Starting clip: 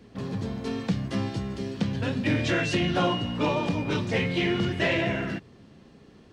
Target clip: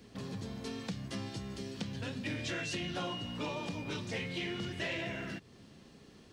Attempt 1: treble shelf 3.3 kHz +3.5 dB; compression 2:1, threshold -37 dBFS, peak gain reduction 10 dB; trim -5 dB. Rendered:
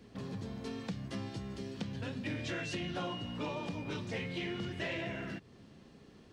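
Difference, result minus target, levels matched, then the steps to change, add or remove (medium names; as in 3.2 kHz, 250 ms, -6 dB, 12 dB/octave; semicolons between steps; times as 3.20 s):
8 kHz band -4.5 dB
change: treble shelf 3.3 kHz +11 dB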